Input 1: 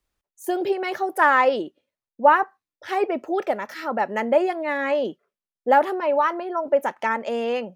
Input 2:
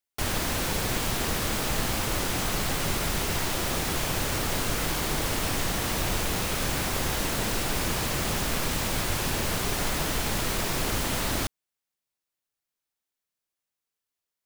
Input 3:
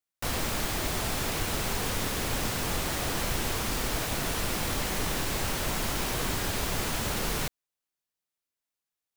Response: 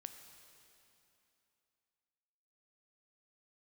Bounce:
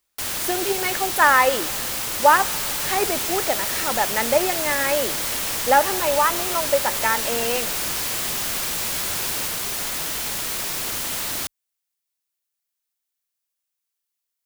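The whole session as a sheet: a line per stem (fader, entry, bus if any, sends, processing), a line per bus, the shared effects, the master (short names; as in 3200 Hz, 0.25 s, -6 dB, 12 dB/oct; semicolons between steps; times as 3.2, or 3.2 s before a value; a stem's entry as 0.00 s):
-1.5 dB, 0.00 s, send -3 dB, dry
-2.5 dB, 0.00 s, no send, dry
-4.5 dB, 2.00 s, no send, dry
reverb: on, RT60 2.9 s, pre-delay 8 ms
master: tilt +2.5 dB/oct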